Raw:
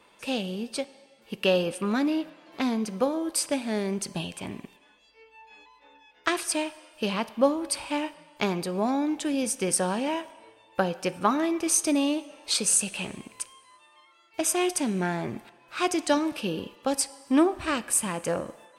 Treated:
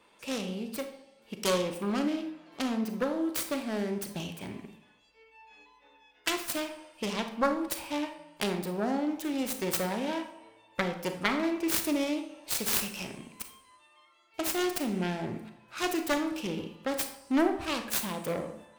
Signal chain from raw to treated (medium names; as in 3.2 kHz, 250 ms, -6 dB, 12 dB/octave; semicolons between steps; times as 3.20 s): self-modulated delay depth 0.45 ms; on a send: reverberation RT60 0.60 s, pre-delay 29 ms, DRR 7 dB; on the sum: trim -4.5 dB